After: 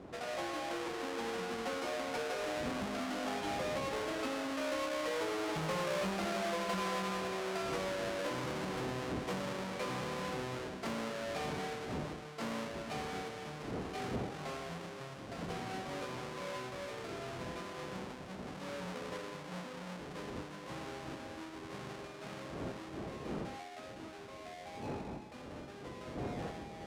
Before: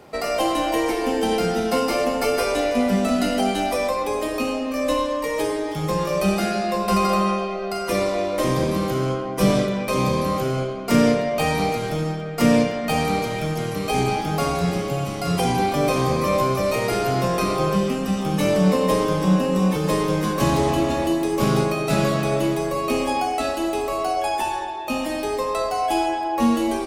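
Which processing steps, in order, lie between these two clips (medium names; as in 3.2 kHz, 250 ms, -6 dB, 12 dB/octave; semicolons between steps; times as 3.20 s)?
square wave that keeps the level; Doppler pass-by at 5.97 s, 12 m/s, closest 4.6 m; wind noise 280 Hz -44 dBFS; high-pass 50 Hz; bass shelf 280 Hz -11 dB; compression 5:1, threshold -38 dBFS, peak gain reduction 20.5 dB; distance through air 58 m; saturation -34 dBFS, distortion -19 dB; trim +6 dB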